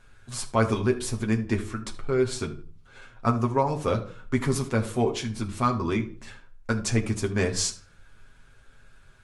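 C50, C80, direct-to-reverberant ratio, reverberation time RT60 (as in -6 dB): 13.5 dB, 18.0 dB, 1.0 dB, no single decay rate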